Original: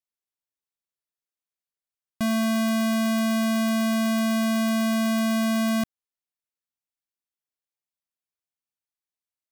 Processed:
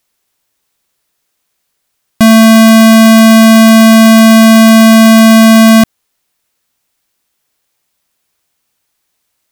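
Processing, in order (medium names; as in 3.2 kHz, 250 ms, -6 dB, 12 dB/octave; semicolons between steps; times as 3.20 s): loudness maximiser +29 dB; trim -1.5 dB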